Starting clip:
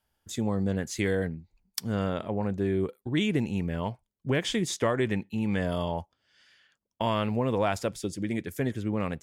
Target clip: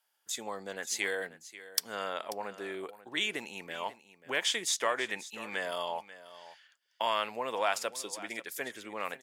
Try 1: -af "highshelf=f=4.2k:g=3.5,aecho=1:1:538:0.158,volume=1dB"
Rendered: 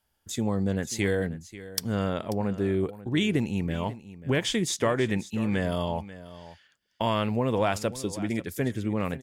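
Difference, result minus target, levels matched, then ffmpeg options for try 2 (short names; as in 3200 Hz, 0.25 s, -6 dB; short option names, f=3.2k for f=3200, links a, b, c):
1000 Hz band -4.5 dB
-af "highpass=770,highshelf=f=4.2k:g=3.5,aecho=1:1:538:0.158,volume=1dB"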